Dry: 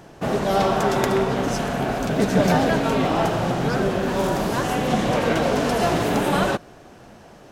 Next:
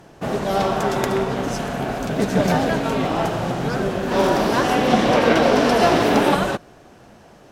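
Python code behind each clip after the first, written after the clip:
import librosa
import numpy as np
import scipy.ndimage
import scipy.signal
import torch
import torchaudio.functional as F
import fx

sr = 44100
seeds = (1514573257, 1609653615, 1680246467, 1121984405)

y = fx.cheby_harmonics(x, sr, harmonics=(7,), levels_db=(-34,), full_scale_db=-3.5)
y = fx.spec_box(y, sr, start_s=4.12, length_s=2.22, low_hz=210.0, high_hz=6100.0, gain_db=6)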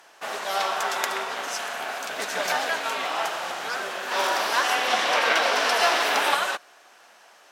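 y = scipy.signal.sosfilt(scipy.signal.butter(2, 1100.0, 'highpass', fs=sr, output='sos'), x)
y = y * librosa.db_to_amplitude(2.0)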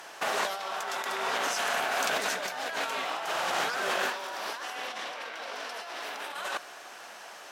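y = fx.low_shelf(x, sr, hz=66.0, db=10.0)
y = fx.over_compress(y, sr, threshold_db=-34.0, ratio=-1.0)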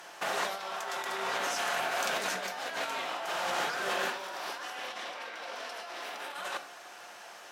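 y = fx.room_shoebox(x, sr, seeds[0], volume_m3=370.0, walls='furnished', distance_m=0.88)
y = y * librosa.db_to_amplitude(-3.5)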